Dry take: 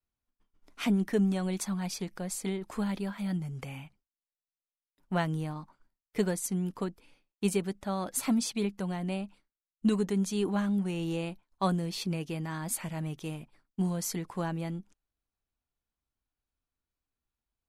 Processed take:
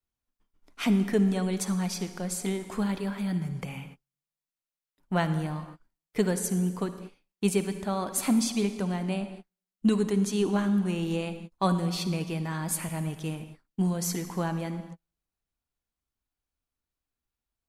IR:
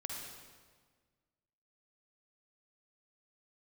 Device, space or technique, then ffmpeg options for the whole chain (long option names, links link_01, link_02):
keyed gated reverb: -filter_complex "[0:a]asplit=3[link_01][link_02][link_03];[1:a]atrim=start_sample=2205[link_04];[link_02][link_04]afir=irnorm=-1:irlink=0[link_05];[link_03]apad=whole_len=779989[link_06];[link_05][link_06]sidechaingate=range=-46dB:threshold=-54dB:ratio=16:detection=peak,volume=-4dB[link_07];[link_01][link_07]amix=inputs=2:normalize=0"